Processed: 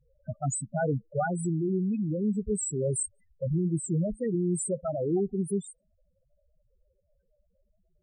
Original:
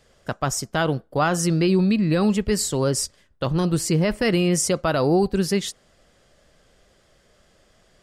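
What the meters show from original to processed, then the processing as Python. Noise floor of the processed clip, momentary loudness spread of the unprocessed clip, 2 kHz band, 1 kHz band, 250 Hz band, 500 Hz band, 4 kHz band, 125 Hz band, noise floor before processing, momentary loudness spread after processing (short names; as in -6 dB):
-73 dBFS, 7 LU, -14.5 dB, -11.0 dB, -8.0 dB, -8.0 dB, under -40 dB, -6.5 dB, -60 dBFS, 5 LU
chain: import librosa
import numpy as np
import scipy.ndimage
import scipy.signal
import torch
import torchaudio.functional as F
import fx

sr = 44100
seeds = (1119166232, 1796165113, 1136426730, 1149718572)

y = fx.high_shelf_res(x, sr, hz=6800.0, db=6.0, q=3.0)
y = fx.spec_topn(y, sr, count=4)
y = fx.rider(y, sr, range_db=4, speed_s=0.5)
y = F.gain(torch.from_numpy(y), -5.5).numpy()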